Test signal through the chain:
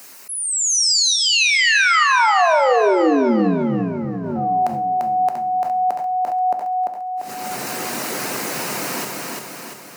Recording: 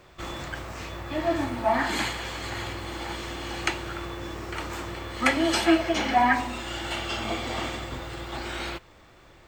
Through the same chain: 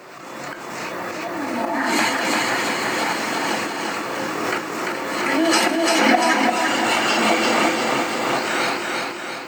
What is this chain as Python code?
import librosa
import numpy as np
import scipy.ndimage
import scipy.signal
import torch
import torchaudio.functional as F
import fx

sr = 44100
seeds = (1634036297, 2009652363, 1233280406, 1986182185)

p1 = scipy.signal.sosfilt(scipy.signal.butter(4, 180.0, 'highpass', fs=sr, output='sos'), x)
p2 = fx.auto_swell(p1, sr, attack_ms=525.0)
p3 = fx.dereverb_blind(p2, sr, rt60_s=0.53)
p4 = fx.peak_eq(p3, sr, hz=3400.0, db=-11.5, octaves=0.25)
p5 = fx.level_steps(p4, sr, step_db=9)
p6 = p4 + (p5 * librosa.db_to_amplitude(-1.5))
p7 = fx.hum_notches(p6, sr, base_hz=50, count=5)
p8 = p7 + fx.echo_feedback(p7, sr, ms=344, feedback_pct=54, wet_db=-3, dry=0)
p9 = fx.rev_double_slope(p8, sr, seeds[0], early_s=0.51, late_s=4.0, knee_db=-21, drr_db=8.0)
p10 = fx.pre_swell(p9, sr, db_per_s=26.0)
y = p10 * librosa.db_to_amplitude(9.0)